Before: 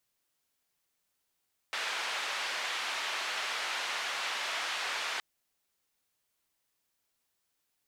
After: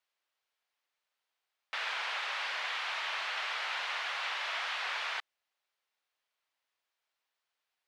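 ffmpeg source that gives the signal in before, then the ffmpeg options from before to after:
-f lavfi -i "anoisesrc=c=white:d=3.47:r=44100:seed=1,highpass=f=790,lowpass=f=3100,volume=-20.8dB"
-filter_complex "[0:a]acrossover=split=490 4500:gain=0.0891 1 0.158[s0][s1][s2];[s0][s1][s2]amix=inputs=3:normalize=0"

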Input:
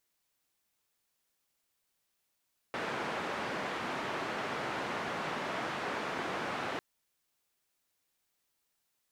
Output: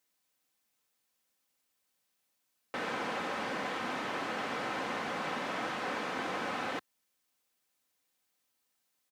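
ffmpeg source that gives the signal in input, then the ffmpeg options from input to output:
-f lavfi -i "anoisesrc=c=white:d=4.05:r=44100:seed=1,highpass=f=160,lowpass=f=1500,volume=-20dB"
-af "highpass=79,aecho=1:1:3.9:0.36"

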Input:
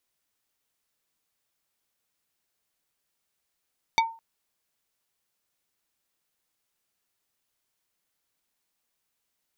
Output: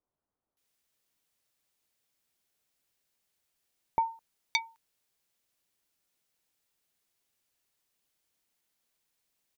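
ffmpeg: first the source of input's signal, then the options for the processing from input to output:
-f lavfi -i "aevalsrc='0.158*pow(10,-3*t/0.35)*sin(2*PI*908*t)+0.119*pow(10,-3*t/0.117)*sin(2*PI*2270*t)+0.0891*pow(10,-3*t/0.066)*sin(2*PI*3632*t)+0.0668*pow(10,-3*t/0.051)*sin(2*PI*4540*t)+0.0501*pow(10,-3*t/0.037)*sin(2*PI*5902*t)':d=0.21:s=44100"
-filter_complex "[0:a]acrossover=split=1200[s0][s1];[s1]adelay=570[s2];[s0][s2]amix=inputs=2:normalize=0"

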